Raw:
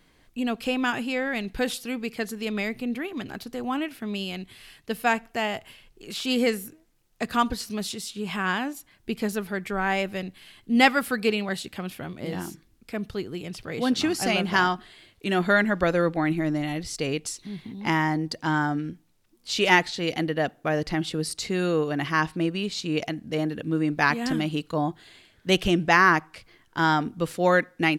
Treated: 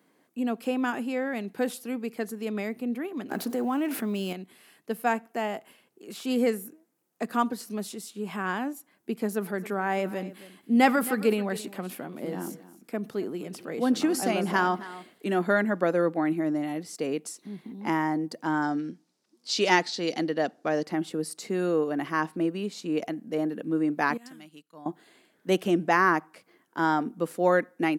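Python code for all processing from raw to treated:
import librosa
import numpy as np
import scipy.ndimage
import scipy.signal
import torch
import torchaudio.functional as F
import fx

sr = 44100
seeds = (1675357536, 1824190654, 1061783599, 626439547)

y = fx.chain(x, sr, fx.law_mismatch(coded='mu'),
    fx.env_flatten(amount_pct=70), at=(3.31, 4.33))
y = fx.chain(y, sr, fx.transient(attack_db=2, sustain_db=7),
    fx.echo_single(ms=269, db=-17.0), at=(9.31, 15.32))
y = fx.chain(y, sr, fx.lowpass(hz=9000.0, slope=12),
    fx.peak_eq(hz=4800.0, db=13.0, octaves=1.1), at=(18.62, 20.85))
y = fx.chain(y, sr, fx.tone_stack(knobs='5-5-5'),
    fx.upward_expand(threshold_db=-56.0, expansion=1.5), at=(24.17, 24.86))
y = scipy.signal.sosfilt(scipy.signal.butter(4, 200.0, 'highpass', fs=sr, output='sos'), y)
y = fx.peak_eq(y, sr, hz=3600.0, db=-11.5, octaves=2.2)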